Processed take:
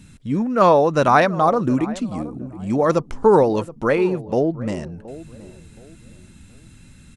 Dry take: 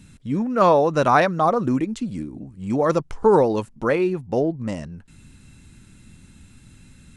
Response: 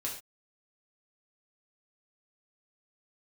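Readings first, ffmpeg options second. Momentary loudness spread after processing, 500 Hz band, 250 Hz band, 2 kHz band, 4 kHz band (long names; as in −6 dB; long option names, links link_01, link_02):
16 LU, +2.0 dB, +2.0 dB, +2.0 dB, +2.0 dB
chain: -filter_complex "[0:a]asplit=2[link_01][link_02];[link_02]adelay=722,lowpass=frequency=840:poles=1,volume=-16dB,asplit=2[link_03][link_04];[link_04]adelay=722,lowpass=frequency=840:poles=1,volume=0.31,asplit=2[link_05][link_06];[link_06]adelay=722,lowpass=frequency=840:poles=1,volume=0.31[link_07];[link_01][link_03][link_05][link_07]amix=inputs=4:normalize=0,volume=2dB"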